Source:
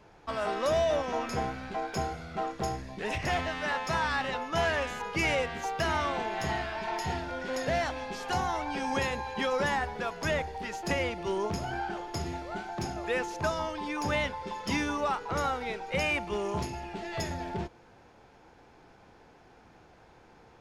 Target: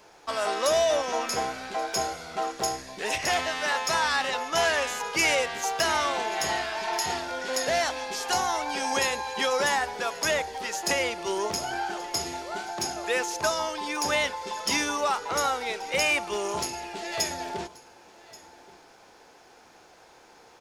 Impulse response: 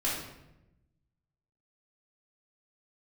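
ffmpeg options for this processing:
-af "bass=f=250:g=-14,treble=f=4000:g=11,aecho=1:1:1131:0.0891,volume=1.58"

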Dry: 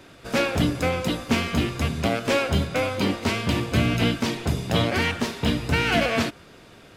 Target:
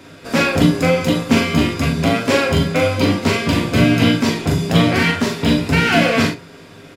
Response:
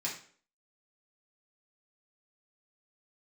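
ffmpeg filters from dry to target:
-filter_complex "[0:a]aecho=1:1:40|42:0.447|0.422,asplit=2[s0][s1];[1:a]atrim=start_sample=2205,atrim=end_sample=3087,lowshelf=f=460:g=10[s2];[s1][s2]afir=irnorm=-1:irlink=0,volume=0.501[s3];[s0][s3]amix=inputs=2:normalize=0,volume=1.26"

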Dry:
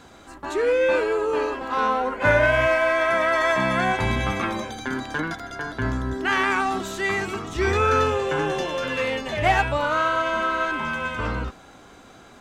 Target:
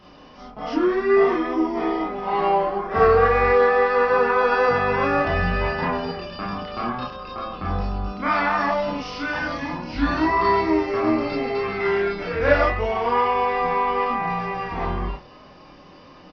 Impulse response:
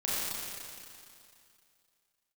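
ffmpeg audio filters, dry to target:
-filter_complex "[0:a]aresample=16000,aresample=44100,asetrate=33516,aresample=44100,bandreject=f=60:t=h:w=6,bandreject=f=120:t=h:w=6[s0];[1:a]atrim=start_sample=2205,atrim=end_sample=3528,asetrate=57330,aresample=44100[s1];[s0][s1]afir=irnorm=-1:irlink=0"

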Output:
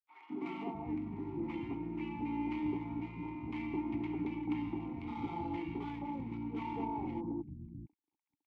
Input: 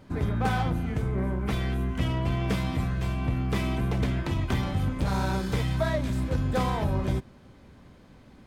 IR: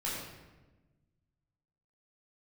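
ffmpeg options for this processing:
-filter_complex "[0:a]adynamicsmooth=sensitivity=4.5:basefreq=3300,aeval=exprs='sgn(val(0))*max(abs(val(0))-0.00668,0)':c=same,asetrate=39289,aresample=44100,atempo=1.12246,asplit=3[s0][s1][s2];[s0]bandpass=f=300:t=q:w=8,volume=1[s3];[s1]bandpass=f=870:t=q:w=8,volume=0.501[s4];[s2]bandpass=f=2240:t=q:w=8,volume=0.355[s5];[s3][s4][s5]amix=inputs=3:normalize=0,acrossover=split=190|950[s6][s7][s8];[s7]adelay=210[s9];[s6]adelay=650[s10];[s10][s9][s8]amix=inputs=3:normalize=0,volume=2"

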